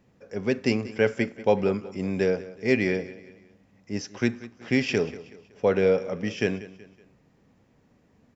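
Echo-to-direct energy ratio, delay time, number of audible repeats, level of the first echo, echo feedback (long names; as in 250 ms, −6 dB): −16.5 dB, 187 ms, 3, −17.5 dB, 42%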